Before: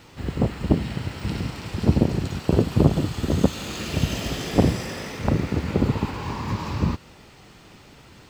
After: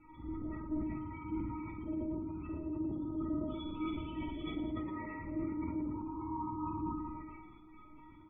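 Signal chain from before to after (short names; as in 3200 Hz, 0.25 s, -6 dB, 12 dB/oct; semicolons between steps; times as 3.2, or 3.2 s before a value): 2.22–4.4 reverse delay 0.191 s, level -4 dB; steep low-pass 3700 Hz 48 dB/oct; high shelf 2600 Hz -2 dB; comb 0.9 ms, depth 42%; dynamic EQ 330 Hz, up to +7 dB, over -37 dBFS, Q 3; compressor 3:1, threshold -25 dBFS, peak gain reduction 13.5 dB; limiter -22 dBFS, peak gain reduction 10.5 dB; loudest bins only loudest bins 32; metallic resonator 310 Hz, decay 0.24 s, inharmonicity 0.002; reverse bouncing-ball echo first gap 50 ms, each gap 1.25×, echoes 5; sustainer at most 29 dB/s; gain +5.5 dB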